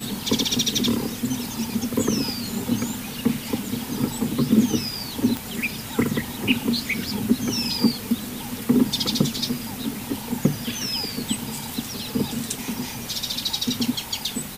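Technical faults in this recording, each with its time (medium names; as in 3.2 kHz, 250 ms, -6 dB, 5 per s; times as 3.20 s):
5.37 s: pop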